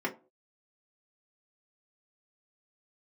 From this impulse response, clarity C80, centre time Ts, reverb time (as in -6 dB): 22.0 dB, 12 ms, no single decay rate